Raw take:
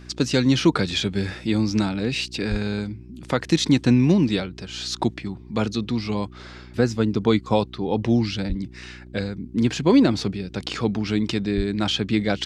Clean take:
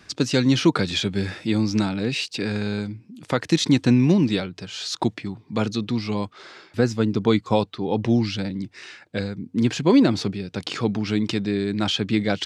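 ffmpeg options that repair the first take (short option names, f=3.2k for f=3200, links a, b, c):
-filter_complex "[0:a]bandreject=f=61.1:t=h:w=4,bandreject=f=122.2:t=h:w=4,bandreject=f=183.3:t=h:w=4,bandreject=f=244.4:t=h:w=4,bandreject=f=305.5:t=h:w=4,bandreject=f=366.6:t=h:w=4,asplit=3[a][b][c];[a]afade=t=out:st=2.5:d=0.02[d];[b]highpass=f=140:w=0.5412,highpass=f=140:w=1.3066,afade=t=in:st=2.5:d=0.02,afade=t=out:st=2.62:d=0.02[e];[c]afade=t=in:st=2.62:d=0.02[f];[d][e][f]amix=inputs=3:normalize=0,asplit=3[g][h][i];[g]afade=t=out:st=8.48:d=0.02[j];[h]highpass=f=140:w=0.5412,highpass=f=140:w=1.3066,afade=t=in:st=8.48:d=0.02,afade=t=out:st=8.6:d=0.02[k];[i]afade=t=in:st=8.6:d=0.02[l];[j][k][l]amix=inputs=3:normalize=0,asplit=3[m][n][o];[m]afade=t=out:st=11.56:d=0.02[p];[n]highpass=f=140:w=0.5412,highpass=f=140:w=1.3066,afade=t=in:st=11.56:d=0.02,afade=t=out:st=11.68:d=0.02[q];[o]afade=t=in:st=11.68:d=0.02[r];[p][q][r]amix=inputs=3:normalize=0"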